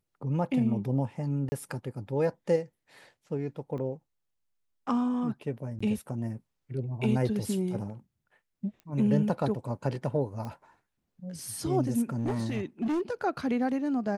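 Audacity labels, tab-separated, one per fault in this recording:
1.490000	1.520000	gap 30 ms
3.780000	3.780000	gap 2.4 ms
5.790000	5.800000	gap 15 ms
8.800000	8.800000	pop -34 dBFS
10.450000	10.450000	pop -26 dBFS
12.170000	13.010000	clipped -25.5 dBFS

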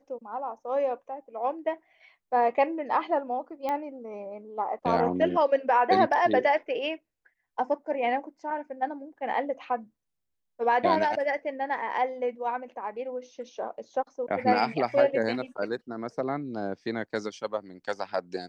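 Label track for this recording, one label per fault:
3.690000	3.690000	pop -18 dBFS

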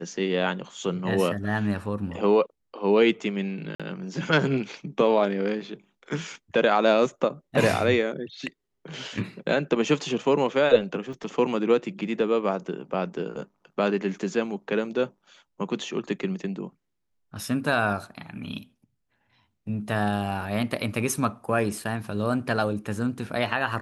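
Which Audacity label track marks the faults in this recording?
3.750000	3.800000	gap 46 ms
11.130000	11.130000	gap 3.3 ms

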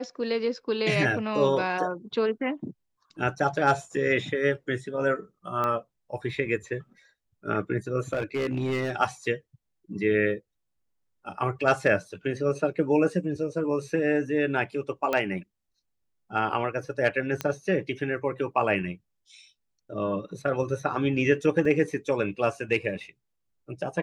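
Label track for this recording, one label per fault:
5.640000	5.640000	pop -16 dBFS
8.130000	8.920000	clipped -23.5 dBFS
15.130000	15.130000	pop -13 dBFS
17.410000	17.410000	pop -13 dBFS
21.650000	21.650000	gap 3.5 ms

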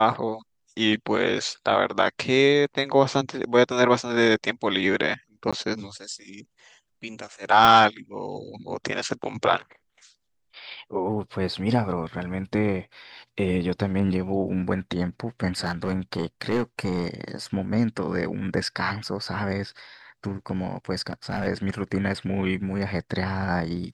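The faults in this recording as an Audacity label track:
5.510000	5.530000	gap 16 ms
7.650000	7.650000	pop -5 dBFS
15.590000	17.080000	clipped -19 dBFS
21.070000	21.480000	clipped -20.5 dBFS

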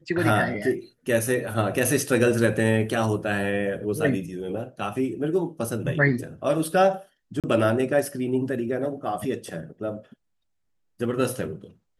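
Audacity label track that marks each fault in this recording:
7.400000	7.440000	gap 37 ms

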